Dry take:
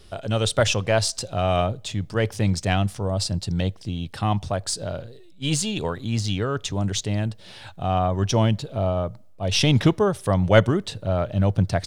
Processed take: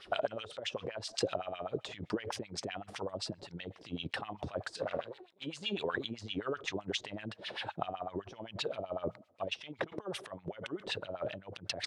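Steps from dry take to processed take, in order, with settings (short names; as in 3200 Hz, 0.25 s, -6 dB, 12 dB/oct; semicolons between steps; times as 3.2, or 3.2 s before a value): negative-ratio compressor -31 dBFS, ratio -1; 4.81–5.44 one-sided clip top -40.5 dBFS, bottom -22.5 dBFS; LFO band-pass sine 7.8 Hz 320–3000 Hz; gain +3 dB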